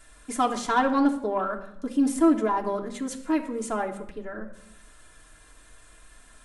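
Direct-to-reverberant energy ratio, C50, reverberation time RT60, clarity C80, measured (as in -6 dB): -1.0 dB, 11.5 dB, 0.75 s, 14.5 dB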